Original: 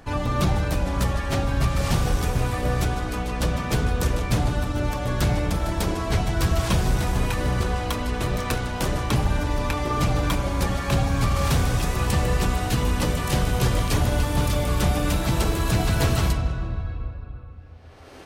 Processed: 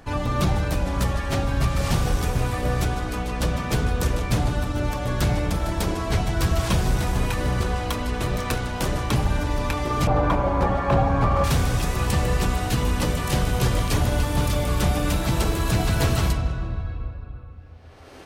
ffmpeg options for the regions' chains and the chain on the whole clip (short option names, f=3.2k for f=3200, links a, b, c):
-filter_complex "[0:a]asettb=1/sr,asplit=3[a][b][c];[a]atrim=end=10.074[d];[b]atrim=start=10.07:end=11.44,asetpts=PTS-STARTPTS,afade=t=in:d=0.004:c=qsin,afade=t=out:st=1.366:d=0.004:c=qsin,lowpass=f=1.2k:p=1,equalizer=f=840:w=0.63:g=10[e];[c]atrim=start=11.436[f];[d][e]acrossfade=d=0.004:c1=hsin:c2=qsin[g];[g][f]acrossfade=d=0.004:c1=qsin:c2=hsin"